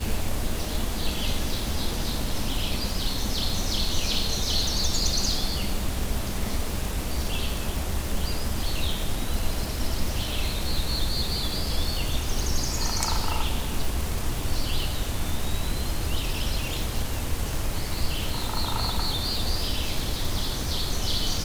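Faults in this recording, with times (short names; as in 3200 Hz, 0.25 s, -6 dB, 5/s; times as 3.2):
crackle 540/s -30 dBFS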